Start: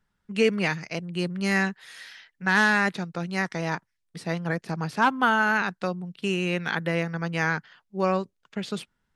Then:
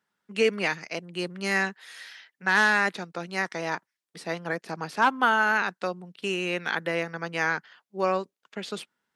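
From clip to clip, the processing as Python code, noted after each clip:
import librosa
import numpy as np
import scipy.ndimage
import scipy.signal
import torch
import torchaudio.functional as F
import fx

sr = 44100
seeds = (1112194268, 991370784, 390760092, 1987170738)

y = scipy.signal.sosfilt(scipy.signal.butter(2, 290.0, 'highpass', fs=sr, output='sos'), x)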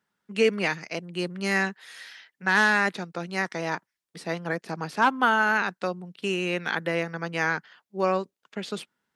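y = fx.low_shelf(x, sr, hz=250.0, db=5.5)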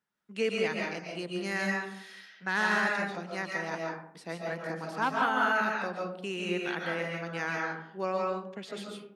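y = fx.rev_freeverb(x, sr, rt60_s=0.68, hf_ratio=0.45, predelay_ms=100, drr_db=-1.5)
y = F.gain(torch.from_numpy(y), -8.5).numpy()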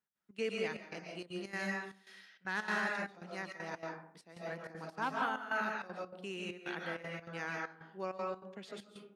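y = fx.step_gate(x, sr, bpm=196, pattern='x.xx.xxxxx..xxx', floor_db=-12.0, edge_ms=4.5)
y = F.gain(torch.from_numpy(y), -7.0).numpy()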